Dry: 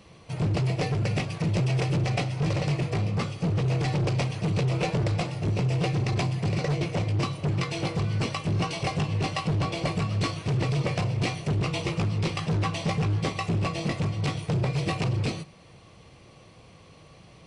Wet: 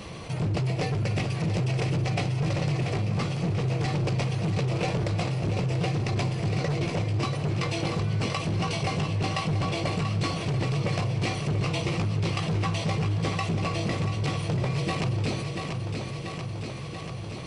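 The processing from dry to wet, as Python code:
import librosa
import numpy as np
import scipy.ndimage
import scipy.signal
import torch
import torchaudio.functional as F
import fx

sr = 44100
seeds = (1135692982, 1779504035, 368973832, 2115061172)

y = fx.echo_feedback(x, sr, ms=686, feedback_pct=55, wet_db=-9.5)
y = fx.env_flatten(y, sr, amount_pct=50)
y = F.gain(torch.from_numpy(y), -3.0).numpy()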